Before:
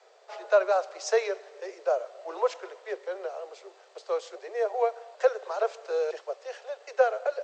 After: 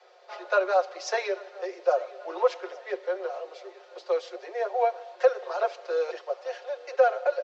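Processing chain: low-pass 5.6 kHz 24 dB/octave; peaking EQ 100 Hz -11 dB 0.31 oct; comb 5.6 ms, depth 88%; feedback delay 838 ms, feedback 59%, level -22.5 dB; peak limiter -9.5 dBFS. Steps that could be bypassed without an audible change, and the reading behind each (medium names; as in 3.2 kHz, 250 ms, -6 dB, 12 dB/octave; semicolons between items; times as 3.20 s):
peaking EQ 100 Hz: input has nothing below 320 Hz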